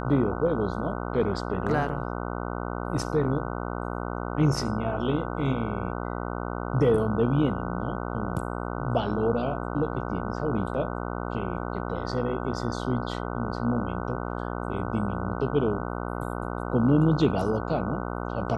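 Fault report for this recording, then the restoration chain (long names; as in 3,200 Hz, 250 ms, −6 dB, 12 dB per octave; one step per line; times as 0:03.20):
mains buzz 60 Hz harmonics 25 −32 dBFS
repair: hum removal 60 Hz, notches 25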